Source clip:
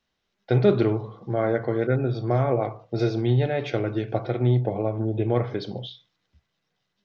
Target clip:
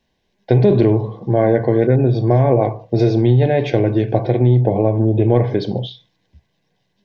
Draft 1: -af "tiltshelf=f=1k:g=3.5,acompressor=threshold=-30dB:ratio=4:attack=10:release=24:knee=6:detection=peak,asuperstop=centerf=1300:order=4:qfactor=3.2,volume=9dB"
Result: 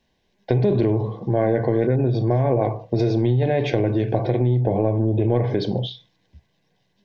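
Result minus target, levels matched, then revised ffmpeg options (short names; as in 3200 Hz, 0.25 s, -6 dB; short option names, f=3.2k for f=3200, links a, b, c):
compressor: peak gain reduction +6.5 dB
-af "tiltshelf=f=1k:g=3.5,acompressor=threshold=-21dB:ratio=4:attack=10:release=24:knee=6:detection=peak,asuperstop=centerf=1300:order=4:qfactor=3.2,volume=9dB"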